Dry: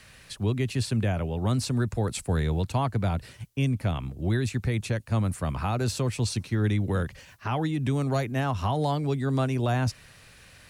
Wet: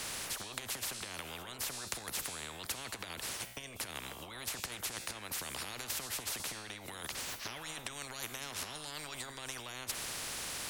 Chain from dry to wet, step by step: compressor with a negative ratio -30 dBFS, ratio -0.5; feedback comb 61 Hz, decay 0.79 s, harmonics all, mix 40%; spectrum-flattening compressor 10:1; trim +3.5 dB

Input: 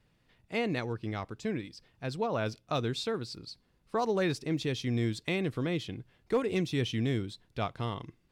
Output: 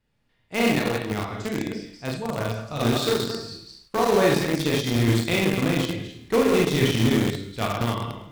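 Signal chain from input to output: chunks repeated in reverse 124 ms, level -4 dB; Schroeder reverb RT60 0.56 s, combs from 27 ms, DRR -1.5 dB; time-frequency box 2.17–2.80 s, 220–6200 Hz -6 dB; in parallel at -7 dB: bit crusher 4-bit; on the sum: feedback echo behind a high-pass 107 ms, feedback 68%, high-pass 2.1 kHz, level -21 dB; gate -54 dBFS, range -9 dB; trim +2 dB

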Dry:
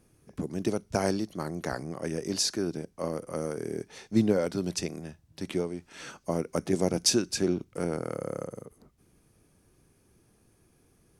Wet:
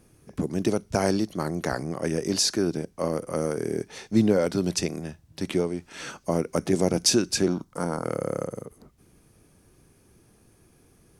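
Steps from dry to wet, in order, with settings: 7.48–8.04 s: fifteen-band graphic EQ 100 Hz -11 dB, 400 Hz -10 dB, 1 kHz +9 dB, 2.5 kHz -11 dB; in parallel at -0.5 dB: peak limiter -20 dBFS, peak gain reduction 9 dB

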